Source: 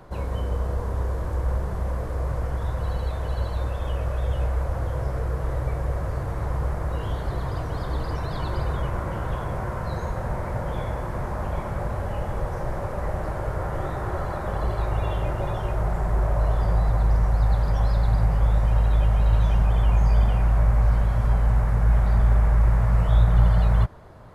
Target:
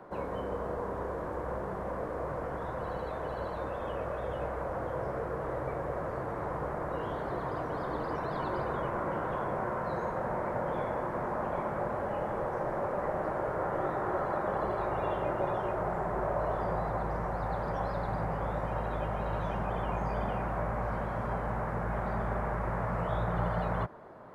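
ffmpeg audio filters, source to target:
ffmpeg -i in.wav -filter_complex "[0:a]acrossover=split=180 2100:gain=0.0891 1 0.2[link_01][link_02][link_03];[link_01][link_02][link_03]amix=inputs=3:normalize=0" out.wav

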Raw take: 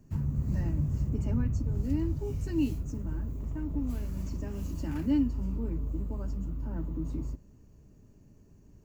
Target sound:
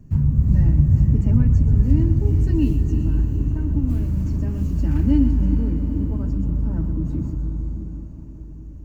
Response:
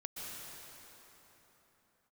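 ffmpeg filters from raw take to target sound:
-filter_complex "[0:a]bass=frequency=250:gain=10,treble=frequency=4000:gain=-4,asplit=2[link_01][link_02];[1:a]atrim=start_sample=2205,asetrate=32634,aresample=44100,adelay=125[link_03];[link_02][link_03]afir=irnorm=-1:irlink=0,volume=-7dB[link_04];[link_01][link_04]amix=inputs=2:normalize=0,volume=3.5dB"

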